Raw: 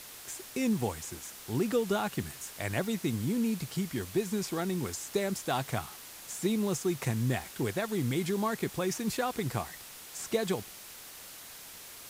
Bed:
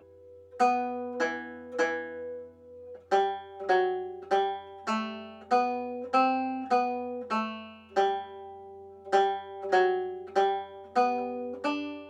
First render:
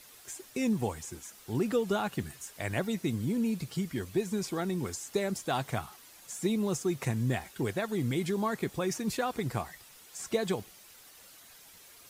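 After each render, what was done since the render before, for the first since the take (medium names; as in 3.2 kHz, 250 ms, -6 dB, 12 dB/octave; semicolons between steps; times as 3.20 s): noise reduction 9 dB, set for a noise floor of -48 dBFS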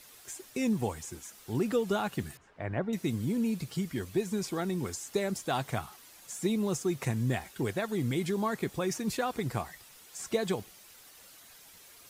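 2.37–2.93 s: low-pass 1.5 kHz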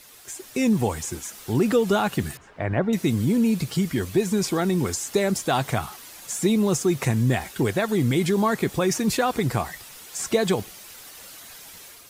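in parallel at -2 dB: peak limiter -28 dBFS, peak gain reduction 11 dB; on the sum: level rider gain up to 6 dB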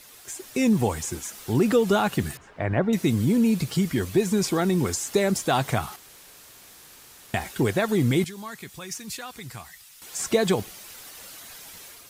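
5.96–7.34 s: room tone; 8.24–10.02 s: amplifier tone stack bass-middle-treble 5-5-5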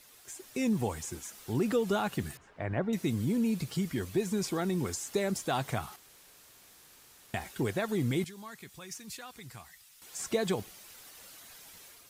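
trim -8.5 dB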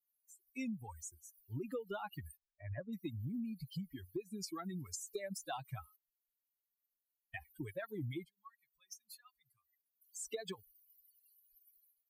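expander on every frequency bin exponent 3; compression 5:1, threshold -39 dBFS, peak gain reduction 11 dB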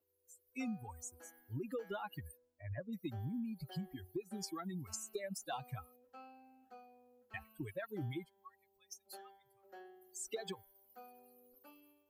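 add bed -31.5 dB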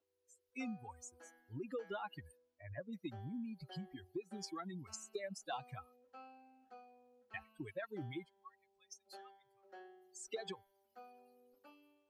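low-pass 6 kHz 12 dB/octave; bass shelf 160 Hz -9.5 dB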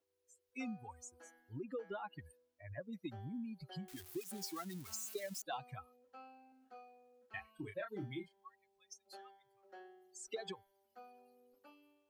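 1.60–2.19 s: treble shelf 2.5 kHz -9 dB; 3.88–5.42 s: zero-crossing glitches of -41.5 dBFS; 6.49–8.34 s: doubling 30 ms -6 dB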